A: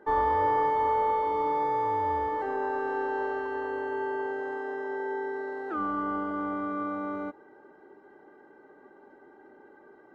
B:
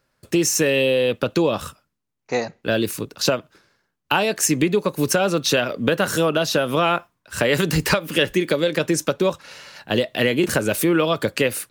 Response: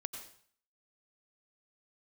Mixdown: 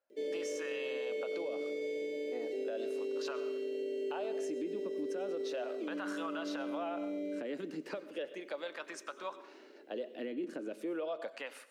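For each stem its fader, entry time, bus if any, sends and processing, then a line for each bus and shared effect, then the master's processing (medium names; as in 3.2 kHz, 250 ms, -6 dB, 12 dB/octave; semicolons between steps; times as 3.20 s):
-2.5 dB, 0.10 s, no send, Chebyshev band-stop 590–2200 Hz, order 4
-11.0 dB, 0.00 s, send -4 dB, fifteen-band graphic EQ 400 Hz -9 dB, 1 kHz -4 dB, 16 kHz -7 dB; wah-wah 0.36 Hz 320–1100 Hz, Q 2.6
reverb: on, RT60 0.55 s, pre-delay 83 ms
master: high-pass 240 Hz 24 dB/octave; treble shelf 2.6 kHz +10.5 dB; peak limiter -30 dBFS, peak gain reduction 8 dB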